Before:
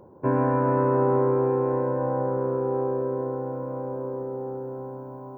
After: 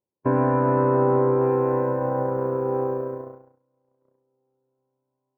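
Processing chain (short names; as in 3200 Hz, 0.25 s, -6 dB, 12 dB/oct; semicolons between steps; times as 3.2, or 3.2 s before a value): 1.41–3.58 high shelf 2200 Hz +8 dB; gate -25 dBFS, range -43 dB; gain +2 dB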